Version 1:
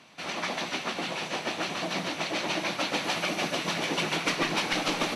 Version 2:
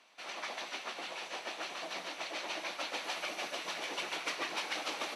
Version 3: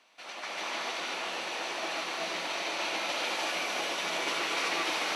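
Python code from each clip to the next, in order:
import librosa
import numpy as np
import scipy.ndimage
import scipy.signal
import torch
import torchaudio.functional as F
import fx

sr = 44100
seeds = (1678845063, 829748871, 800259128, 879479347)

y1 = scipy.signal.sosfilt(scipy.signal.butter(2, 460.0, 'highpass', fs=sr, output='sos'), x)
y1 = F.gain(torch.from_numpy(y1), -8.5).numpy()
y2 = fx.rev_gated(y1, sr, seeds[0], gate_ms=410, shape='rising', drr_db=-6.0)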